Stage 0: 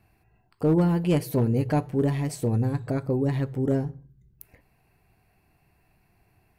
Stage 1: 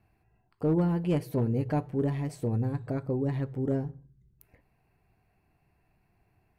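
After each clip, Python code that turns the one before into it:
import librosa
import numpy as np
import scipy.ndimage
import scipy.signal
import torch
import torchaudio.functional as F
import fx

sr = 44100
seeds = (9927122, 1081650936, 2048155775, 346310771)

y = fx.high_shelf(x, sr, hz=3400.0, db=-8.5)
y = F.gain(torch.from_numpy(y), -4.5).numpy()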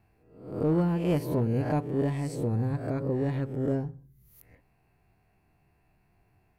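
y = fx.spec_swells(x, sr, rise_s=0.63)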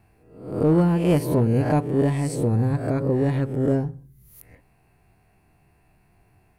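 y = fx.peak_eq(x, sr, hz=9400.0, db=7.5, octaves=0.38)
y = F.gain(torch.from_numpy(y), 7.0).numpy()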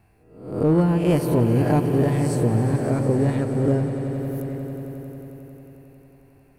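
y = fx.echo_swell(x, sr, ms=90, loudest=5, wet_db=-14.0)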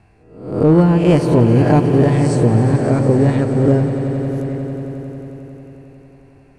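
y = scipy.signal.sosfilt(scipy.signal.butter(4, 8100.0, 'lowpass', fs=sr, output='sos'), x)
y = F.gain(torch.from_numpy(y), 7.0).numpy()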